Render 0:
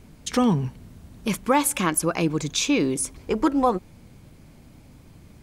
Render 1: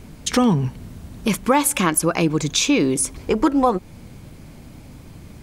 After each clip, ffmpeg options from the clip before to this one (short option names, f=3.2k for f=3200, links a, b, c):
-af "acompressor=threshold=-29dB:ratio=1.5,volume=8dB"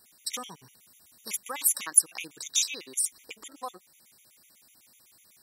-af "aderivative,afftfilt=real='re*gt(sin(2*PI*8*pts/sr)*(1-2*mod(floor(b*sr/1024/1900),2)),0)':imag='im*gt(sin(2*PI*8*pts/sr)*(1-2*mod(floor(b*sr/1024/1900),2)),0)':win_size=1024:overlap=0.75"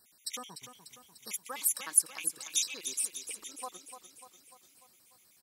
-af "aecho=1:1:296|592|888|1184|1480|1776|2072:0.335|0.194|0.113|0.0654|0.0379|0.022|0.0128,volume=-5dB"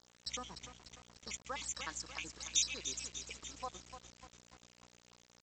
-af "aeval=exprs='val(0)+0.00178*(sin(2*PI*60*n/s)+sin(2*PI*2*60*n/s)/2+sin(2*PI*3*60*n/s)/3+sin(2*PI*4*60*n/s)/4+sin(2*PI*5*60*n/s)/5)':c=same,aresample=16000,aeval=exprs='val(0)*gte(abs(val(0)),0.00299)':c=same,aresample=44100,volume=-1dB"